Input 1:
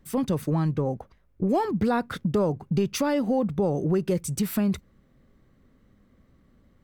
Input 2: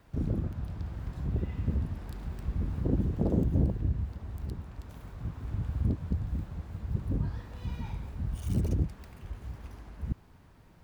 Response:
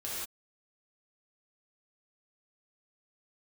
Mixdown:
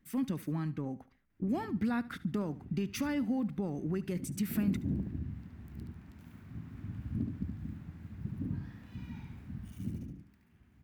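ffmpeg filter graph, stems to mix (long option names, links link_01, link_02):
-filter_complex "[0:a]lowshelf=frequency=260:gain=-8.5,volume=-6.5dB,asplit=2[link_01][link_02];[link_02]volume=-18.5dB[link_03];[1:a]highpass=100,adelay=1300,volume=-6.5dB,afade=type=in:start_time=4.38:duration=0.67:silence=0.251189,afade=type=out:start_time=9.49:duration=0.65:silence=0.281838,asplit=2[link_04][link_05];[link_05]volume=-5dB[link_06];[link_03][link_06]amix=inputs=2:normalize=0,aecho=0:1:72|144|216|288:1|0.29|0.0841|0.0244[link_07];[link_01][link_04][link_07]amix=inputs=3:normalize=0,equalizer=frequency=250:width_type=o:width=1:gain=8,equalizer=frequency=500:width_type=o:width=1:gain=-11,equalizer=frequency=1000:width_type=o:width=1:gain=-5,equalizer=frequency=2000:width_type=o:width=1:gain=4,equalizer=frequency=4000:width_type=o:width=1:gain=-4,equalizer=frequency=8000:width_type=o:width=1:gain=-4"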